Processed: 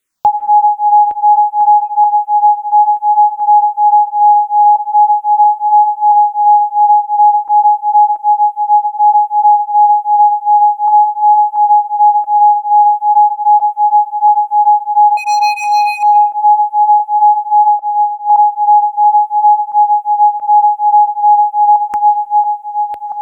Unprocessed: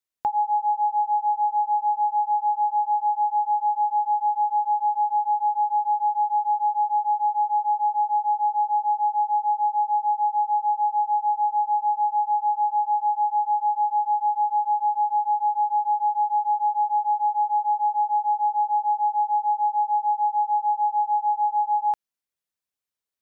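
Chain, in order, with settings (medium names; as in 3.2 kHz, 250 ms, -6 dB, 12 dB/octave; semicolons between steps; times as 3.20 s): backward echo that repeats 680 ms, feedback 48%, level -7 dB; 1.77–2.19 s: compression, threshold -21 dBFS, peak gain reduction 5 dB; 15.17–16.03 s: hard clipper -27.5 dBFS, distortion -17 dB; 17.79–18.30 s: vowel filter u; on a send at -18 dB: reverberation RT60 0.55 s, pre-delay 115 ms; on the sum: loudness maximiser +20 dB; barber-pole phaser -2.7 Hz; trim -1 dB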